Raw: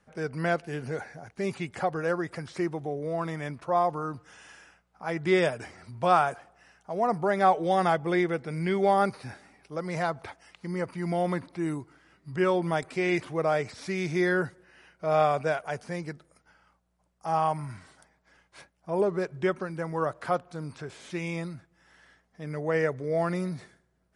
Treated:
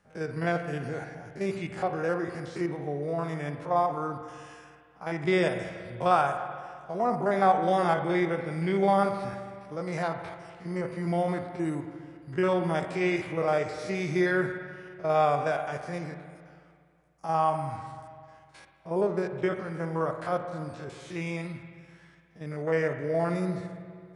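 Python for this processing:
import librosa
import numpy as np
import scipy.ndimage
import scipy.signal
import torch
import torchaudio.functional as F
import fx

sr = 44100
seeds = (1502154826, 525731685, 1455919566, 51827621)

y = fx.spec_steps(x, sr, hold_ms=50)
y = fx.rev_spring(y, sr, rt60_s=2.1, pass_ms=(41, 49), chirp_ms=50, drr_db=7.0)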